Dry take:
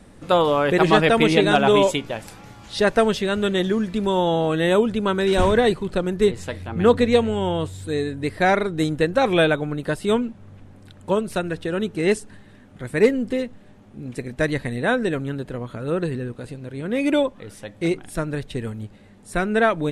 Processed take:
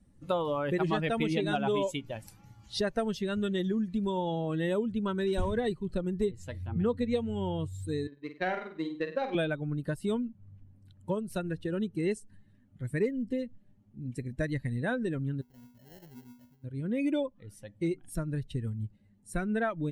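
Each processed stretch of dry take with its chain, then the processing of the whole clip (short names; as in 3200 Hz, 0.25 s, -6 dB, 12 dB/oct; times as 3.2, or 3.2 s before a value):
8.07–9.35 three-band isolator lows -16 dB, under 200 Hz, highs -18 dB, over 4500 Hz + power-law curve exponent 1.4 + flutter echo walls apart 8.4 m, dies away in 0.5 s
15.41–16.64 resonator 82 Hz, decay 0.57 s, harmonics odd, mix 90% + sample-rate reducer 1200 Hz + mismatched tape noise reduction decoder only
whole clip: per-bin expansion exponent 1.5; low shelf 350 Hz +6.5 dB; compressor 3:1, threshold -27 dBFS; gain -2.5 dB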